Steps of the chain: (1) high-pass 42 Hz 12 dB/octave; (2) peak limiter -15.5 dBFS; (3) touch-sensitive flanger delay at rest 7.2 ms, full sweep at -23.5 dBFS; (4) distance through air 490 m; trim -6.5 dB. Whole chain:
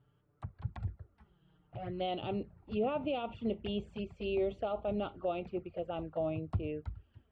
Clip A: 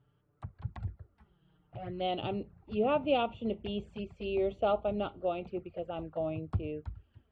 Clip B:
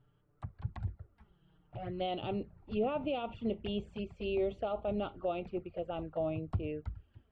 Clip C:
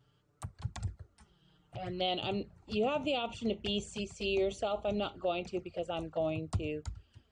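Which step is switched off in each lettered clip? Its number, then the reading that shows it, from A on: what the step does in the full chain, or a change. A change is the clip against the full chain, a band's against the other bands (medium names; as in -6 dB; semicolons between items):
2, crest factor change +3.0 dB; 1, momentary loudness spread change +1 LU; 4, 4 kHz band +8.5 dB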